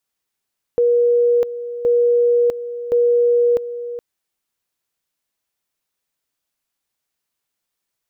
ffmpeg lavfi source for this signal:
ffmpeg -f lavfi -i "aevalsrc='pow(10,(-11.5-13*gte(mod(t,1.07),0.65))/20)*sin(2*PI*479*t)':duration=3.21:sample_rate=44100" out.wav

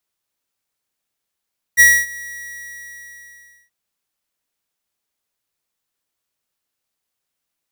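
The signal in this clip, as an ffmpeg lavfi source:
ffmpeg -f lavfi -i "aevalsrc='0.422*(2*lt(mod(1920*t,1),0.5)-1)':duration=1.93:sample_rate=44100,afade=type=in:duration=0.032,afade=type=out:start_time=0.032:duration=0.256:silence=0.0668,afade=type=out:start_time=0.39:duration=1.54" out.wav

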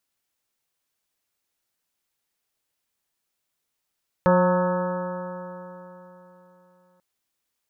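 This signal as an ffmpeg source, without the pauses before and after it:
ffmpeg -f lavfi -i "aevalsrc='0.119*pow(10,-3*t/3.53)*sin(2*PI*179.11*t)+0.0398*pow(10,-3*t/3.53)*sin(2*PI*358.86*t)+0.15*pow(10,-3*t/3.53)*sin(2*PI*539.89*t)+0.0158*pow(10,-3*t/3.53)*sin(2*PI*722.84*t)+0.0794*pow(10,-3*t/3.53)*sin(2*PI*908.33*t)+0.0376*pow(10,-3*t/3.53)*sin(2*PI*1096.95*t)+0.0473*pow(10,-3*t/3.53)*sin(2*PI*1289.31*t)+0.0178*pow(10,-3*t/3.53)*sin(2*PI*1485.97*t)+0.0237*pow(10,-3*t/3.53)*sin(2*PI*1687.48*t)':duration=2.74:sample_rate=44100" out.wav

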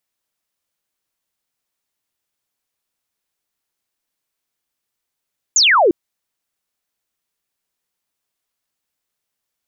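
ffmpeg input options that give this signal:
ffmpeg -f lavfi -i "aevalsrc='0.355*clip(t/0.002,0,1)*clip((0.35-t)/0.002,0,1)*sin(2*PI*7400*0.35/log(310/7400)*(exp(log(310/7400)*t/0.35)-1))':duration=0.35:sample_rate=44100" out.wav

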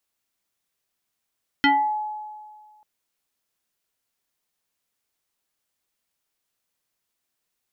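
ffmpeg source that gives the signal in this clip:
ffmpeg -f lavfi -i "aevalsrc='0.224*pow(10,-3*t/1.77)*sin(2*PI*850*t+2.3*pow(10,-3*t/0.38)*sin(2*PI*1.33*850*t))':duration=1.19:sample_rate=44100" out.wav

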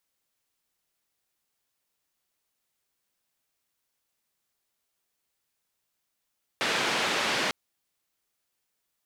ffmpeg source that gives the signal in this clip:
ffmpeg -f lavfi -i "anoisesrc=color=white:duration=0.9:sample_rate=44100:seed=1,highpass=frequency=190,lowpass=frequency=3200,volume=-14.4dB" out.wav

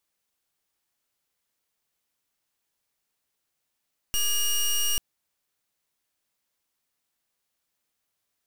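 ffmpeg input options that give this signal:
ffmpeg -f lavfi -i "aevalsrc='0.0631*(2*lt(mod(2860*t,1),0.15)-1)':duration=0.84:sample_rate=44100" out.wav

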